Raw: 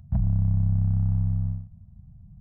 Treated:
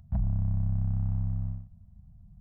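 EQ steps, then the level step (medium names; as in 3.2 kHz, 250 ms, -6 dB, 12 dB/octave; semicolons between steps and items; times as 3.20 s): peaking EQ 130 Hz -6 dB 1.4 oct; -1.5 dB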